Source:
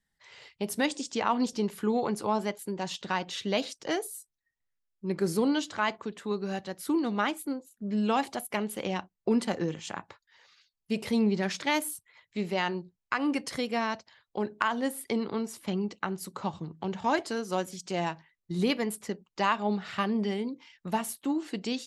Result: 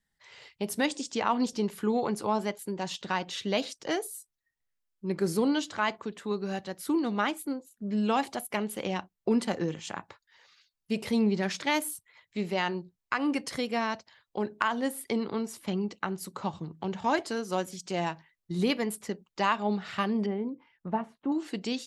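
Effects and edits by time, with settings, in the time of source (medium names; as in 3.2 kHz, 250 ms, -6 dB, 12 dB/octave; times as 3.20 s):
20.26–21.32 s: low-pass 1.3 kHz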